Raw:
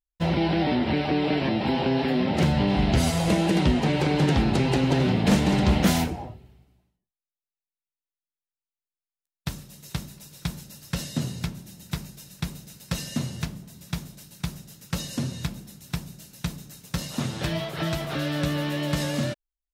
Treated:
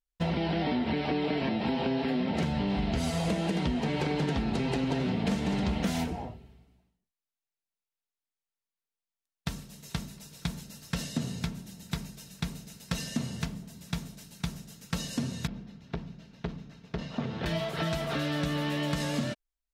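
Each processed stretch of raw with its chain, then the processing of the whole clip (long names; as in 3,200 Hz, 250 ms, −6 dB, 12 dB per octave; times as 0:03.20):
0:15.47–0:17.46: high-frequency loss of the air 250 metres + saturating transformer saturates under 510 Hz
whole clip: high-shelf EQ 12,000 Hz −10.5 dB; comb filter 4.4 ms, depth 33%; downward compressor, threshold −25 dBFS; level −1 dB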